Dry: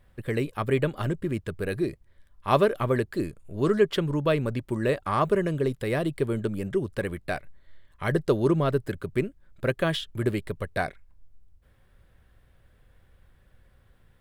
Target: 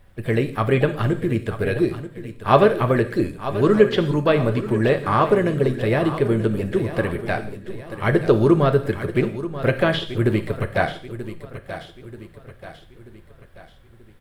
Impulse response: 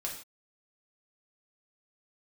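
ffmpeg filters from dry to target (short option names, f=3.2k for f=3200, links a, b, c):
-filter_complex "[0:a]asplit=2[a][b];[b]asetrate=58866,aresample=44100,atempo=0.749154,volume=-17dB[c];[a][c]amix=inputs=2:normalize=0,aecho=1:1:934|1868|2802|3736|4670:0.224|0.103|0.0474|0.0218|0.01,asplit=2[d][e];[1:a]atrim=start_sample=2205,adelay=9[f];[e][f]afir=irnorm=-1:irlink=0,volume=-8.5dB[g];[d][g]amix=inputs=2:normalize=0,acrossover=split=4200[h][i];[i]acompressor=threshold=-53dB:ratio=4:attack=1:release=60[j];[h][j]amix=inputs=2:normalize=0,volume=6dB"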